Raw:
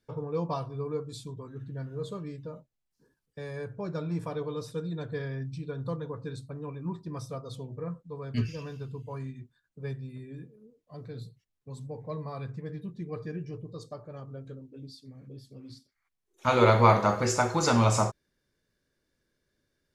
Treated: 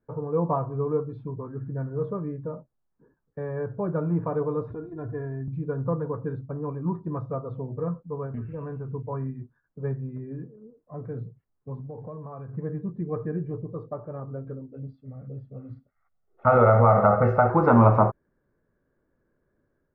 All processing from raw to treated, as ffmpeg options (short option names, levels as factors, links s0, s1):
-filter_complex "[0:a]asettb=1/sr,asplit=3[s0][s1][s2];[s0]atrim=end=4.704[s3];[s1]atrim=start=4.7:end=5.48,asetpts=PTS-STARTPTS,afade=t=in:d=0.004:c=qsin,afade=t=out:st=0.776:d=0.004:c=qsin,equalizer=f=83:t=o:w=2:g=14,acompressor=threshold=0.0126:ratio=3:attack=3.2:release=140:knee=1:detection=peak,aecho=1:1:2.9:0.98,atrim=end_sample=34398[s4];[s2]atrim=start=5.476[s5];[s3][s4]acrossfade=d=0.004:c1=hsin:c2=qsin[s6];[s6][s5]acrossfade=d=0.004:c1=qsin:c2=hsin,asettb=1/sr,asplit=3[s7][s8][s9];[s7]atrim=end=8.264[s10];[s8]atrim=start=8.26:end=8.89,asetpts=PTS-STARTPTS,afade=t=in:d=0.004:c=qsin,afade=t=out:st=0.626:d=0.004:c=qsin,lowpass=3300,acompressor=threshold=0.0141:ratio=5:attack=3.2:release=140:knee=1:detection=peak[s11];[s9]atrim=start=8.886[s12];[s10][s11]acrossfade=d=0.004:c1=hsin:c2=qsin[s13];[s13][s12]acrossfade=d=0.004:c1=qsin:c2=hsin,asettb=1/sr,asplit=3[s14][s15][s16];[s14]atrim=end=11.804[s17];[s15]atrim=start=11.8:end=12.53,asetpts=PTS-STARTPTS,afade=t=in:d=0.004:c=qsin,afade=t=out:st=0.726:d=0.004:c=qsin,bandreject=f=2000:w=5.7,acompressor=threshold=0.00891:ratio=12:attack=3.2:release=140:knee=1:detection=peak[s18];[s16]atrim=start=12.526[s19];[s17][s18]acrossfade=d=0.004:c1=hsin:c2=qsin[s20];[s20][s19]acrossfade=d=0.004:c1=qsin:c2=hsin,asettb=1/sr,asplit=3[s21][s22][s23];[s21]atrim=end=14.724[s24];[s22]atrim=start=14.72:end=17.5,asetpts=PTS-STARTPTS,afade=t=in:d=0.004:c=qsin,afade=t=out:st=2.776:d=0.004:c=qsin,aecho=1:1:1.5:0.68,atrim=end_sample=122598,acompressor=threshold=0.112:ratio=6:attack=3.2:release=140:knee=1:detection=peak[s25];[s23]atrim=start=17.496[s26];[s24][s25]acrossfade=d=0.004:c1=hsin:c2=qsin[s27];[s27][s26]acrossfade=d=0.004:c1=qsin:c2=hsin,lowpass=f=1400:w=0.5412,lowpass=f=1400:w=1.3066,equalizer=f=64:w=0.58:g=-2.5,dynaudnorm=f=220:g=3:m=1.58,volume=1.5"